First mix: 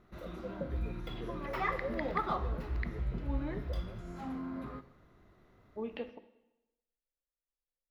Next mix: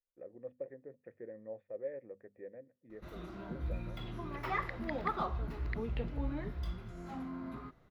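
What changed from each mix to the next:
background: entry +2.90 s; reverb: off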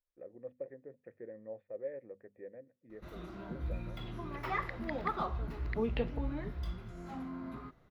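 second voice +7.0 dB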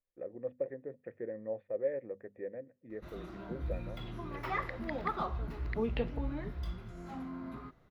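first voice +7.0 dB

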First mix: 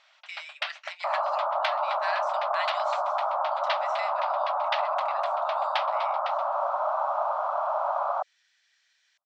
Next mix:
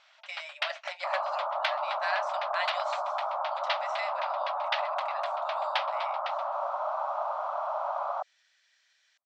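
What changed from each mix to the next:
speech: remove high-pass 1.2 kHz 24 dB/octave; second sound -4.5 dB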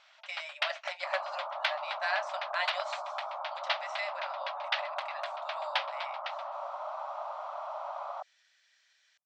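second sound -7.0 dB

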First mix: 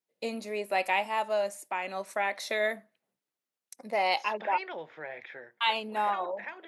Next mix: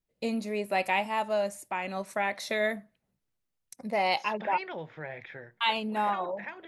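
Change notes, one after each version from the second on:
master: remove high-pass 330 Hz 12 dB/octave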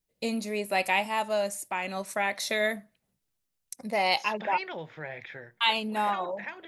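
master: add treble shelf 3.4 kHz +9 dB

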